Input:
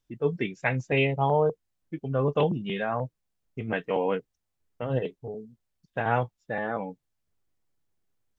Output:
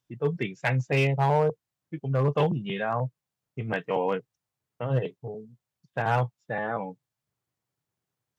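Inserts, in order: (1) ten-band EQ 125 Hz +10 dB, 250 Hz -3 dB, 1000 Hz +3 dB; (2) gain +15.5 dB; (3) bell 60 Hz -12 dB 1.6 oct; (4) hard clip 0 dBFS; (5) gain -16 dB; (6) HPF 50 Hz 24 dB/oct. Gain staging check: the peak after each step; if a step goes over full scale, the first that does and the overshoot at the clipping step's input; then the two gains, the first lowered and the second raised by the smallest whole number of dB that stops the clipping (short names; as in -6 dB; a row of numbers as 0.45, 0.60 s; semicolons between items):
-7.0, +8.5, +8.0, 0.0, -16.0, -13.0 dBFS; step 2, 8.0 dB; step 2 +7.5 dB, step 5 -8 dB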